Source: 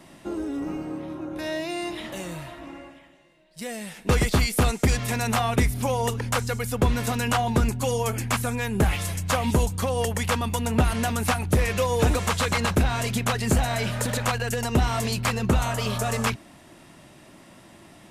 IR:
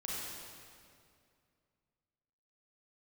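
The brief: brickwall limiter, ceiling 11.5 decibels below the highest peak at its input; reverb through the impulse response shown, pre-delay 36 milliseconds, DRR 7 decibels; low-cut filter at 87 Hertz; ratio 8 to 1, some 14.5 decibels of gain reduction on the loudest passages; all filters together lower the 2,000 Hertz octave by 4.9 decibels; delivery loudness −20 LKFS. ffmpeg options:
-filter_complex "[0:a]highpass=87,equalizer=frequency=2000:width_type=o:gain=-6.5,acompressor=threshold=-33dB:ratio=8,alimiter=level_in=6.5dB:limit=-24dB:level=0:latency=1,volume=-6.5dB,asplit=2[link_01][link_02];[1:a]atrim=start_sample=2205,adelay=36[link_03];[link_02][link_03]afir=irnorm=-1:irlink=0,volume=-9dB[link_04];[link_01][link_04]amix=inputs=2:normalize=0,volume=19dB"

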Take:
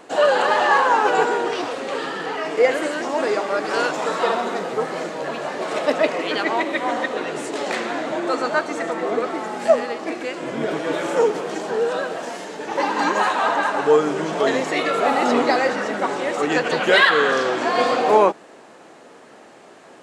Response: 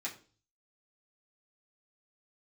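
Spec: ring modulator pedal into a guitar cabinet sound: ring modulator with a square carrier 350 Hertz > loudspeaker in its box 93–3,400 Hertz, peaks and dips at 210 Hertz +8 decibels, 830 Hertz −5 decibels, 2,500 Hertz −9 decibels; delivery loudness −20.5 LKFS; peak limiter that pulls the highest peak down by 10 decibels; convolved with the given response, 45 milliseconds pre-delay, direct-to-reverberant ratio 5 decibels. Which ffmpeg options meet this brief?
-filter_complex "[0:a]alimiter=limit=-12.5dB:level=0:latency=1,asplit=2[link_01][link_02];[1:a]atrim=start_sample=2205,adelay=45[link_03];[link_02][link_03]afir=irnorm=-1:irlink=0,volume=-6.5dB[link_04];[link_01][link_04]amix=inputs=2:normalize=0,aeval=exprs='val(0)*sgn(sin(2*PI*350*n/s))':channel_layout=same,highpass=93,equalizer=frequency=210:width_type=q:width=4:gain=8,equalizer=frequency=830:width_type=q:width=4:gain=-5,equalizer=frequency=2500:width_type=q:width=4:gain=-9,lowpass=frequency=3400:width=0.5412,lowpass=frequency=3400:width=1.3066,volume=3dB"

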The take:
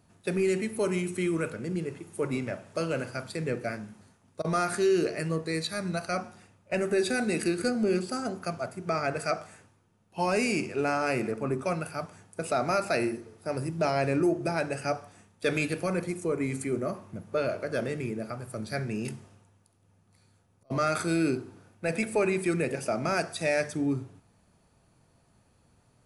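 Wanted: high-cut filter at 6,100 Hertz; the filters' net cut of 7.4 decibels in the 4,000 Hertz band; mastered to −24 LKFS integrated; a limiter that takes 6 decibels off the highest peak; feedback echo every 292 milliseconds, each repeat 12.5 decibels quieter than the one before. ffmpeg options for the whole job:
ffmpeg -i in.wav -af "lowpass=6100,equalizer=frequency=4000:width_type=o:gain=-8,alimiter=limit=-22dB:level=0:latency=1,aecho=1:1:292|584|876:0.237|0.0569|0.0137,volume=8.5dB" out.wav

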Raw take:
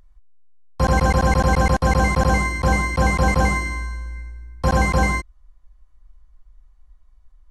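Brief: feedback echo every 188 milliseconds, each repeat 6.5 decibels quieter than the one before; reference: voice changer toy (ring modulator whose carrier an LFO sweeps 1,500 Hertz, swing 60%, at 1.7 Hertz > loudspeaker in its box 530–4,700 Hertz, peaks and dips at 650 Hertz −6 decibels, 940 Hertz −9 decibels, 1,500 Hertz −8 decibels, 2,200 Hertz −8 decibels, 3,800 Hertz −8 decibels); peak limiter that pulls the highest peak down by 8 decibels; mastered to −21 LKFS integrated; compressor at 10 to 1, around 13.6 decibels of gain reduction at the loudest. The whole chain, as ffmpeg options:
ffmpeg -i in.wav -af "acompressor=threshold=-27dB:ratio=10,alimiter=limit=-23.5dB:level=0:latency=1,aecho=1:1:188|376|564|752|940|1128:0.473|0.222|0.105|0.0491|0.0231|0.0109,aeval=exprs='val(0)*sin(2*PI*1500*n/s+1500*0.6/1.7*sin(2*PI*1.7*n/s))':channel_layout=same,highpass=530,equalizer=frequency=650:width_type=q:width=4:gain=-6,equalizer=frequency=940:width_type=q:width=4:gain=-9,equalizer=frequency=1500:width_type=q:width=4:gain=-8,equalizer=frequency=2200:width_type=q:width=4:gain=-8,equalizer=frequency=3800:width_type=q:width=4:gain=-8,lowpass=frequency=4700:width=0.5412,lowpass=frequency=4700:width=1.3066,volume=18dB" out.wav

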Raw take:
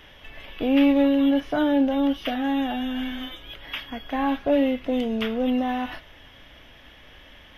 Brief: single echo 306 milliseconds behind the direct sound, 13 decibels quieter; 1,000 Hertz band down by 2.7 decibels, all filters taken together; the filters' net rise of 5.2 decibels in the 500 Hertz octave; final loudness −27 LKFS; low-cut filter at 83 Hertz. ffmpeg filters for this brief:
ffmpeg -i in.wav -af "highpass=83,equalizer=frequency=500:width_type=o:gain=8,equalizer=frequency=1000:width_type=o:gain=-8,aecho=1:1:306:0.224,volume=-6dB" out.wav

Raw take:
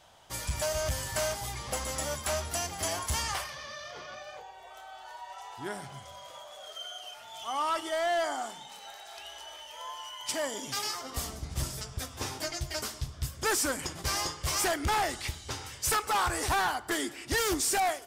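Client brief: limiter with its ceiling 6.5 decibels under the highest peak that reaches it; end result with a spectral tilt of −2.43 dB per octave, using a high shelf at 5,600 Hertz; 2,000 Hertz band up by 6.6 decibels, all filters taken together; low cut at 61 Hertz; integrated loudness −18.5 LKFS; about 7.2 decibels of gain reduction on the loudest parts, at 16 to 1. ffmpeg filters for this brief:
ffmpeg -i in.wav -af "highpass=61,equalizer=frequency=2000:width_type=o:gain=7.5,highshelf=frequency=5600:gain=6,acompressor=threshold=-27dB:ratio=16,volume=16dB,alimiter=limit=-9dB:level=0:latency=1" out.wav

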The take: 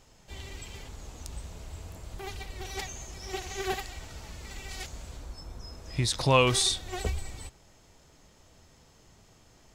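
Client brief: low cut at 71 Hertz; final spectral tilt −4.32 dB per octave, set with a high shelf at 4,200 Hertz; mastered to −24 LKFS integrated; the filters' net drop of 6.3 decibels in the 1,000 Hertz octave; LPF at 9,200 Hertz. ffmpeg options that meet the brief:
ffmpeg -i in.wav -af "highpass=71,lowpass=9200,equalizer=frequency=1000:width_type=o:gain=-7,highshelf=frequency=4200:gain=-7,volume=9dB" out.wav

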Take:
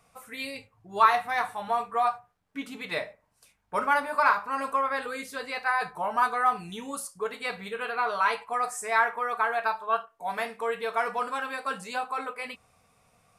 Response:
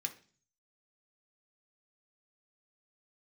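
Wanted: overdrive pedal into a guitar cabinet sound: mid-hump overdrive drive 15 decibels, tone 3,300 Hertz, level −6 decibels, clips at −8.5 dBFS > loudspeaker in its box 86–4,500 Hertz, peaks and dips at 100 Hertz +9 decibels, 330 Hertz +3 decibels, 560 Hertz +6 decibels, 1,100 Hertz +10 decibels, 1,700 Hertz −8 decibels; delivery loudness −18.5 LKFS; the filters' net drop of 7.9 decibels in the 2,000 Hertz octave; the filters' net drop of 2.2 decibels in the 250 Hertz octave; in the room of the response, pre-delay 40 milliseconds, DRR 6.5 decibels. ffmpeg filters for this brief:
-filter_complex "[0:a]equalizer=frequency=250:width_type=o:gain=-3.5,equalizer=frequency=2000:width_type=o:gain=-7,asplit=2[link_01][link_02];[1:a]atrim=start_sample=2205,adelay=40[link_03];[link_02][link_03]afir=irnorm=-1:irlink=0,volume=-6dB[link_04];[link_01][link_04]amix=inputs=2:normalize=0,asplit=2[link_05][link_06];[link_06]highpass=frequency=720:poles=1,volume=15dB,asoftclip=type=tanh:threshold=-8.5dB[link_07];[link_05][link_07]amix=inputs=2:normalize=0,lowpass=frequency=3300:poles=1,volume=-6dB,highpass=86,equalizer=frequency=100:width_type=q:width=4:gain=9,equalizer=frequency=330:width_type=q:width=4:gain=3,equalizer=frequency=560:width_type=q:width=4:gain=6,equalizer=frequency=1100:width_type=q:width=4:gain=10,equalizer=frequency=1700:width_type=q:width=4:gain=-8,lowpass=frequency=4500:width=0.5412,lowpass=frequency=4500:width=1.3066,volume=0.5dB"

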